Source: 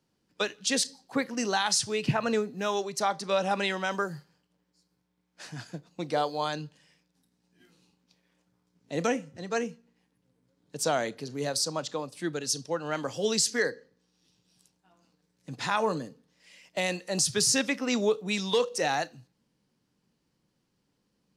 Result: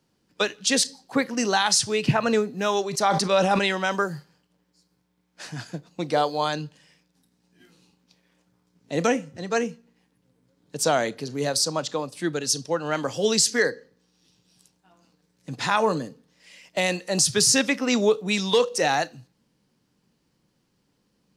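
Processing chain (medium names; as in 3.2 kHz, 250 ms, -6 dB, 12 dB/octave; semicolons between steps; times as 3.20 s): 2.85–3.59 s: decay stretcher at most 41 dB/s; trim +5.5 dB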